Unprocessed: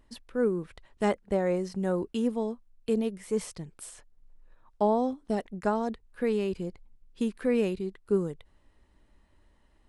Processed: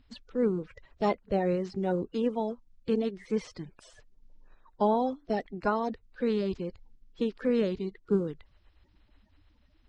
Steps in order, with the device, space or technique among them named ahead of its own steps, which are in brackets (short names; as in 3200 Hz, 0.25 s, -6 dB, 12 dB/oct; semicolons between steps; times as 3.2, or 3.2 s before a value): clip after many re-uploads (LPF 5700 Hz 24 dB/oct; bin magnitudes rounded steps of 30 dB)